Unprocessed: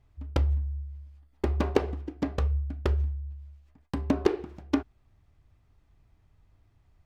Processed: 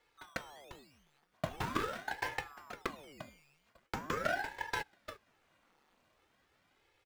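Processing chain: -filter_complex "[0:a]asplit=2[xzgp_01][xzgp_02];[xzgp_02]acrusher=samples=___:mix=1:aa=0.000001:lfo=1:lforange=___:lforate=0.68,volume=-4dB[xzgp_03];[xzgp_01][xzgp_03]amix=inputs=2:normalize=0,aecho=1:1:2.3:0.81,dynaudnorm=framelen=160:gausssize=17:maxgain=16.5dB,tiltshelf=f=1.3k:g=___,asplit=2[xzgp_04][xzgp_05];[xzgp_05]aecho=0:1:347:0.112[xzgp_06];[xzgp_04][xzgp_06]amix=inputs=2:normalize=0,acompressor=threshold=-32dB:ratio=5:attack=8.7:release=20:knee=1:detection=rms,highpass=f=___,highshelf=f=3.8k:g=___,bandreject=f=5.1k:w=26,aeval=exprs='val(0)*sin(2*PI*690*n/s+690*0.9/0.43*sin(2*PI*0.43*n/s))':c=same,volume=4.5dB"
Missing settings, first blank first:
13, 13, -6.5, 330, -11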